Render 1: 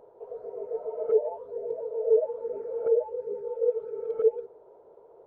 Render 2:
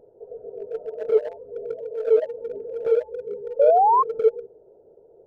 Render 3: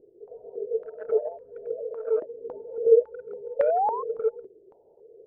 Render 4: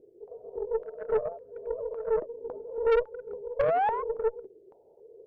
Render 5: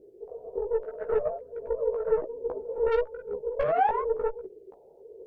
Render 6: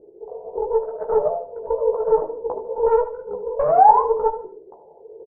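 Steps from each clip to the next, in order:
Wiener smoothing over 41 samples; painted sound rise, 3.59–4.03, 540–1100 Hz -19 dBFS; low shelf 410 Hz +5 dB; gain +2 dB
stepped low-pass 3.6 Hz 360–1800 Hz; gain -8.5 dB
tube stage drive 20 dB, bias 0.45; gain +1 dB
compressor 5:1, threshold -27 dBFS, peak gain reduction 7 dB; chorus voices 6, 1.1 Hz, delay 16 ms, depth 3 ms; gain +7.5 dB
synth low-pass 910 Hz, resonance Q 3.9; feedback echo 76 ms, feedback 33%, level -13 dB; on a send at -12 dB: reverb RT60 0.40 s, pre-delay 3 ms; on the sum: gain +2.5 dB

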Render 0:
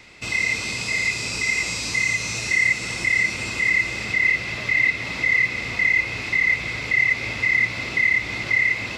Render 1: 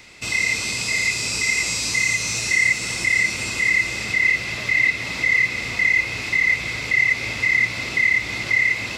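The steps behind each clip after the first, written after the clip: high shelf 5900 Hz +10 dB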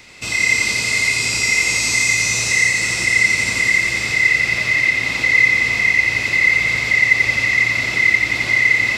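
thinning echo 88 ms, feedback 77%, high-pass 160 Hz, level -4.5 dB; gain +2 dB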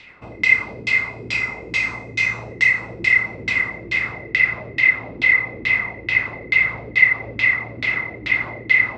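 LFO low-pass saw down 2.3 Hz 300–3500 Hz; gain -4.5 dB

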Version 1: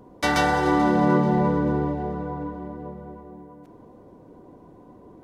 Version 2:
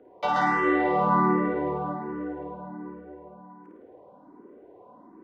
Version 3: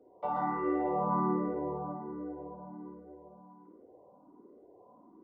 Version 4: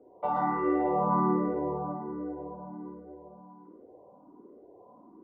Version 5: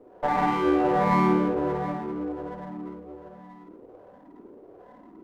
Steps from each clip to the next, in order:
three-band isolator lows -20 dB, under 230 Hz, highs -22 dB, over 2800 Hz; on a send: flutter echo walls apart 9.2 m, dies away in 0.96 s; on the sum: endless phaser +1.3 Hz
polynomial smoothing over 65 samples; gain -7 dB
low-pass opened by the level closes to 1600 Hz; gain +4 dB
running maximum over 9 samples; gain +5 dB

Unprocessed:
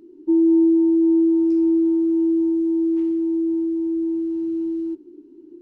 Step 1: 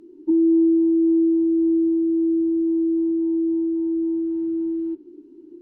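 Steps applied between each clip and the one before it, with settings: treble ducked by the level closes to 430 Hz, closed at -17 dBFS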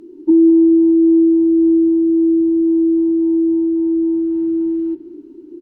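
feedback echo 0.205 s, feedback 59%, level -15 dB; gain +7.5 dB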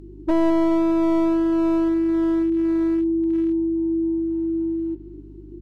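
one-sided fold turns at -11.5 dBFS; hum 50 Hz, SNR 22 dB; gain -6 dB

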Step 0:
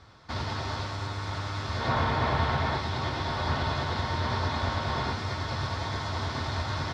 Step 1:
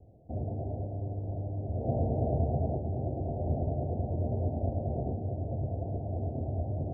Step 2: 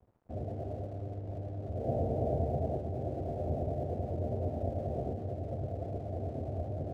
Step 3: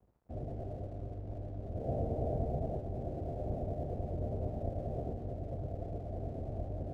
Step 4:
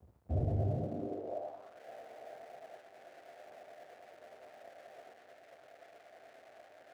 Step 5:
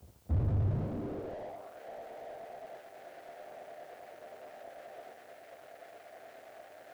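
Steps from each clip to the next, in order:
steep low-pass 740 Hz 96 dB/oct
dynamic EQ 520 Hz, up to +6 dB, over -46 dBFS, Q 1.1; crossover distortion -56.5 dBFS; gain -4.5 dB
octaver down 1 oct, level -2 dB; gain -4 dB
high-pass sweep 76 Hz -> 1700 Hz, 0.53–1.81; gain +5 dB
added noise blue -72 dBFS; slew limiter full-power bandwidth 2.8 Hz; gain +5.5 dB

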